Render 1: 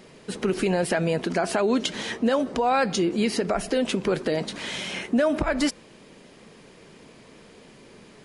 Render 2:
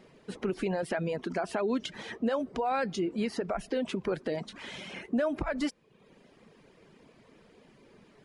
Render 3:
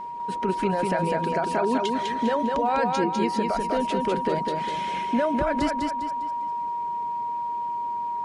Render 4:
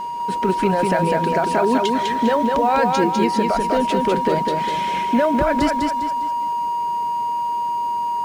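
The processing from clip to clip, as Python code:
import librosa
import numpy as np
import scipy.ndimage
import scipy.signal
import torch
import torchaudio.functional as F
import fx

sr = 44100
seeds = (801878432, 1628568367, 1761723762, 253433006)

y1 = fx.dereverb_blind(x, sr, rt60_s=0.69)
y1 = fx.high_shelf(y1, sr, hz=4000.0, db=-9.5)
y1 = y1 * 10.0 ** (-6.5 / 20.0)
y2 = y1 + 10.0 ** (-36.0 / 20.0) * np.sin(2.0 * np.pi * 950.0 * np.arange(len(y1)) / sr)
y2 = fx.echo_feedback(y2, sr, ms=201, feedback_pct=39, wet_db=-3.5)
y2 = y2 * 10.0 ** (4.0 / 20.0)
y3 = fx.law_mismatch(y2, sr, coded='mu')
y3 = y3 * 10.0 ** (5.5 / 20.0)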